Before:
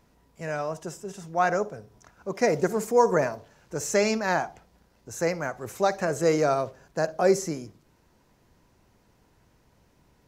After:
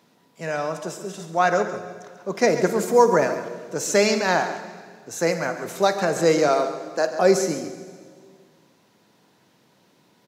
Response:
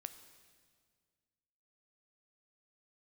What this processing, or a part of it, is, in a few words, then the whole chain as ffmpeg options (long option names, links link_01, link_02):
PA in a hall: -filter_complex "[0:a]asettb=1/sr,asplit=3[link_01][link_02][link_03];[link_01]atrim=end=6.484[link_04];[link_02]atrim=start=6.48:end=7.18,asetpts=PTS-STARTPTS,afade=type=in:duration=0.004:curve=qsin,afade=type=out:start_time=0.696:duration=0.004:curve=qsin,highpass=frequency=240:width=0.5412,highpass=frequency=240:width=1.3066[link_05];[link_03]atrim=start=7.176[link_06];[link_04][link_05]acrossfade=duration=0.004:curve1=hsin:curve2=qsin[link_07];[link_07][link_06]acrossfade=duration=0.004:curve1=qsin:curve2=hsin,highpass=frequency=150:width=0.5412,highpass=frequency=150:width=1.3066,equalizer=frequency=3700:width_type=o:width=0.7:gain=6.5,aecho=1:1:138:0.251[link_08];[1:a]atrim=start_sample=2205[link_09];[link_08][link_09]afir=irnorm=-1:irlink=0,volume=8.5dB"